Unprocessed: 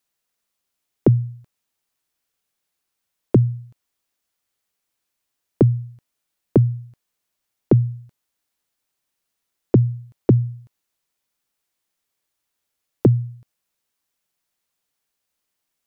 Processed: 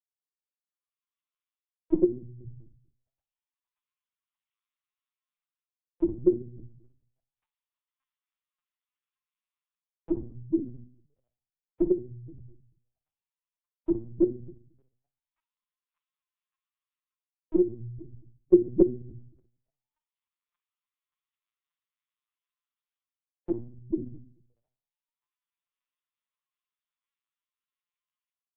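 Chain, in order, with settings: reverse delay 0.122 s, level -1 dB; notches 50/100/150/200/250 Hz; reverse; compressor 5:1, threshold -24 dBFS, peak gain reduction 15 dB; reverse; thin delay 0.322 s, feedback 56%, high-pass 1400 Hz, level -18.5 dB; AGC gain up to 14 dB; limiter -9 dBFS, peak gain reduction 7 dB; auto-wah 360–1100 Hz, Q 6, down, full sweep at -20 dBFS; time stretch by phase-locked vocoder 1.8×; shoebox room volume 590 m³, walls furnished, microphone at 0.84 m; LPC vocoder at 8 kHz pitch kept; three-band expander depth 70%

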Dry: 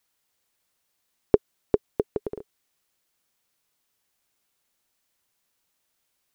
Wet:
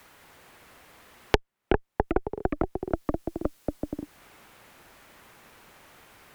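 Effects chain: added harmonics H 8 -12 dB, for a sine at -1.5 dBFS; echoes that change speed 0.209 s, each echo -2 st, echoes 3, each echo -6 dB; three-band squash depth 100%; gain -1 dB

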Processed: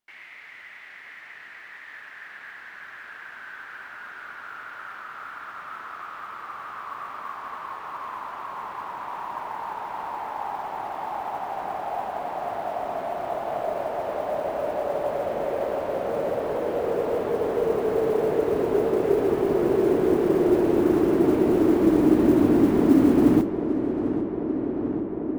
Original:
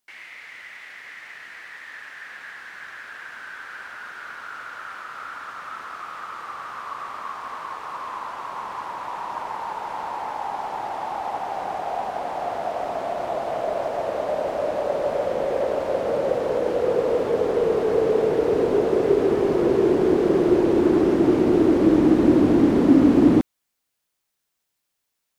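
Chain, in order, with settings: tone controls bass 0 dB, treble -9 dB; notch 510 Hz, Q 12; modulation noise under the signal 31 dB; darkening echo 0.794 s, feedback 83%, low-pass 2800 Hz, level -10.5 dB; gain -2.5 dB

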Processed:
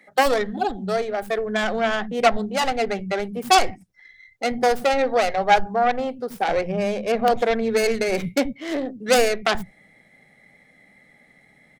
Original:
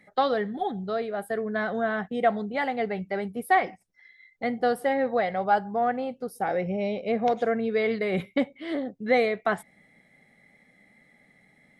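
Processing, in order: tracing distortion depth 0.45 ms; bands offset in time highs, lows 80 ms, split 220 Hz; gain +5.5 dB

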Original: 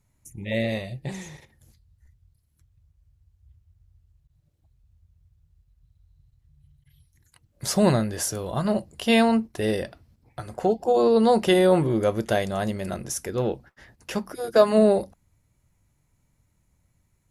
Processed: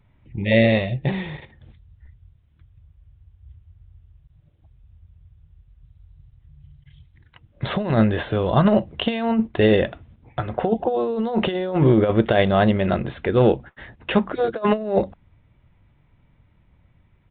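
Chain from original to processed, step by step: downsampling 8000 Hz; negative-ratio compressor -23 dBFS, ratio -0.5; gain +6.5 dB

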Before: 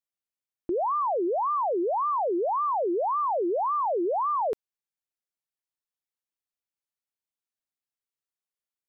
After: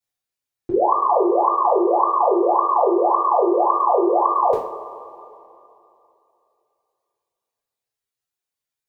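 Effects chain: reverb removal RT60 1.7 s; two-slope reverb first 0.44 s, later 2.9 s, from -18 dB, DRR -9 dB

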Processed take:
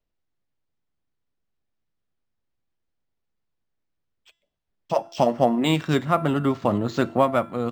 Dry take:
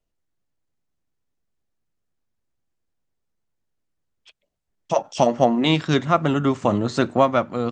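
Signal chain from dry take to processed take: de-hum 337.8 Hz, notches 27; decimation joined by straight lines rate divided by 4×; gain -2 dB

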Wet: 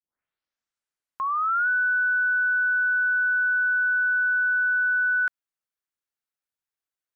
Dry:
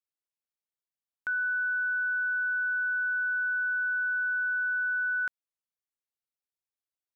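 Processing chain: tape start at the beginning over 1.68 s; bell 1500 Hz +6.5 dB 0.83 oct

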